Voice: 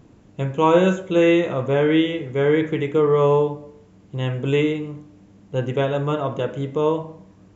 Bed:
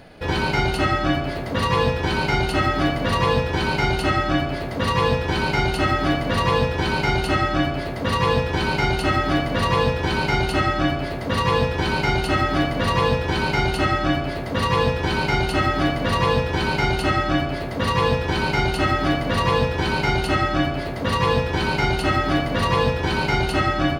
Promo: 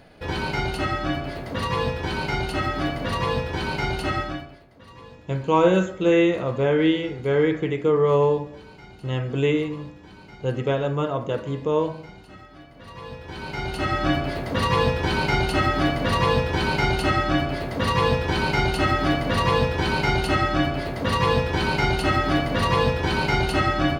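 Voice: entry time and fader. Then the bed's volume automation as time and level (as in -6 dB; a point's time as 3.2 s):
4.90 s, -2.0 dB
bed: 4.21 s -5 dB
4.66 s -25.5 dB
12.66 s -25.5 dB
14.06 s -1 dB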